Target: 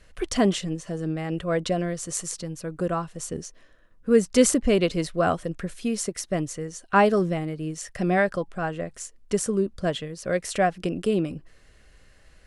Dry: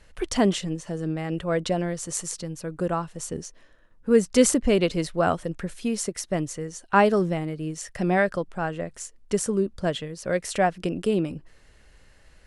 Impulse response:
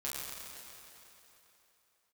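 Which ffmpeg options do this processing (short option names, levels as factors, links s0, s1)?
-af "asuperstop=centerf=890:order=12:qfactor=7.8"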